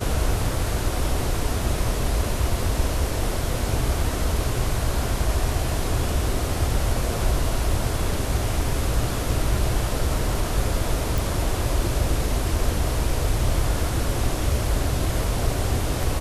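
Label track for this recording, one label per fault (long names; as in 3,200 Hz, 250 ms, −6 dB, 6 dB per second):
11.180000	11.180000	click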